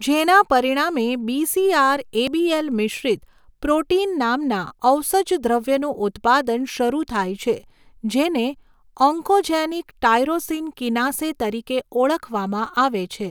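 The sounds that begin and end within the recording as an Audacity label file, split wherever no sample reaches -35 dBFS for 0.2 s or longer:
3.630000	7.600000	sound
8.040000	8.530000	sound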